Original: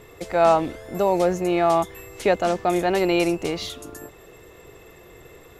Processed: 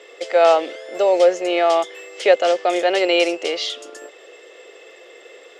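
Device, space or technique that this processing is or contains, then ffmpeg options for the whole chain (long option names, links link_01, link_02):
phone speaker on a table: -af "highpass=frequency=390:width=0.5412,highpass=frequency=390:width=1.3066,equalizer=frequency=530:width_type=q:width=4:gain=7,equalizer=frequency=980:width_type=q:width=4:gain=-7,equalizer=frequency=2000:width_type=q:width=4:gain=4,equalizer=frequency=3100:width_type=q:width=4:gain=10,equalizer=frequency=5000:width_type=q:width=4:gain=6,lowpass=frequency=8200:width=0.5412,lowpass=frequency=8200:width=1.3066,volume=2.5dB"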